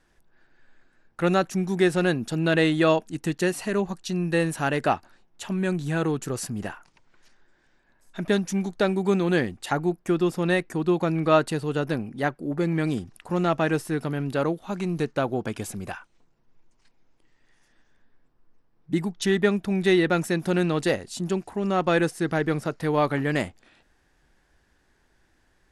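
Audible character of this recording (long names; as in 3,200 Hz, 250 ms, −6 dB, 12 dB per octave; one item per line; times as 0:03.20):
background noise floor −66 dBFS
spectral slope −5.5 dB per octave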